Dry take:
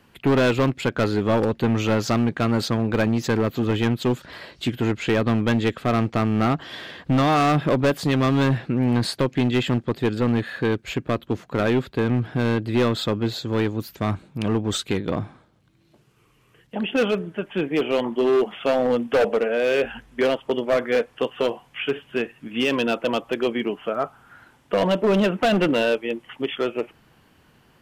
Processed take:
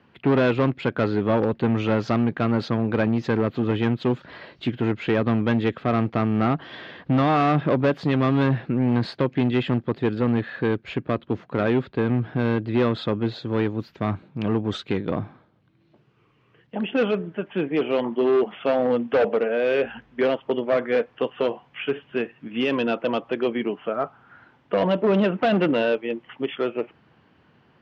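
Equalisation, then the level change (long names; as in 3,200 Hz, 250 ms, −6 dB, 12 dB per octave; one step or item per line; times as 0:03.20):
high-pass filter 90 Hz
high-frequency loss of the air 240 metres
0.0 dB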